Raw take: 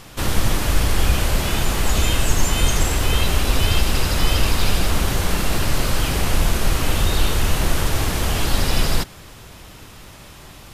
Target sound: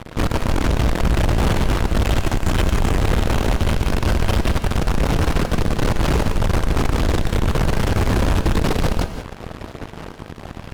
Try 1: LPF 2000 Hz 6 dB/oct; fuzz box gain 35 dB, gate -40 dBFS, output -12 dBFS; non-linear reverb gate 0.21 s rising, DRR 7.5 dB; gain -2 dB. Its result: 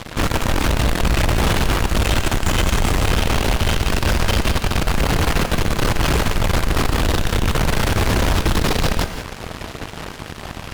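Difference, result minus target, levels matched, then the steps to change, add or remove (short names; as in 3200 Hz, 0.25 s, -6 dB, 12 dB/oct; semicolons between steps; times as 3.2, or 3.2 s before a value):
2000 Hz band +3.5 dB
change: LPF 650 Hz 6 dB/oct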